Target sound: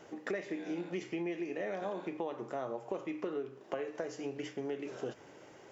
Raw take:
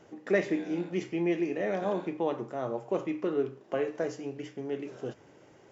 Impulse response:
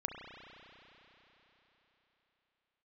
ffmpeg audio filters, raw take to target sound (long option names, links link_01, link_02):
-af "lowshelf=frequency=270:gain=-8,acompressor=threshold=-38dB:ratio=10,volume=4dB"